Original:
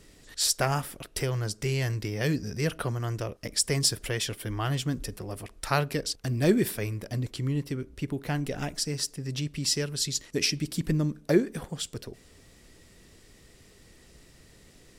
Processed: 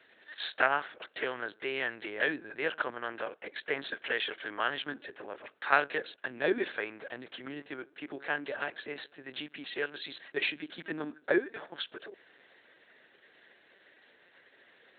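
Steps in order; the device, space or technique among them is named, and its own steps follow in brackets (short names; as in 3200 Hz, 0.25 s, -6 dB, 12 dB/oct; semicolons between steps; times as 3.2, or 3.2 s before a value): HPF 160 Hz 12 dB/oct; talking toy (LPC vocoder at 8 kHz pitch kept; HPF 450 Hz 12 dB/oct; bell 1600 Hz +10 dB 0.39 oct)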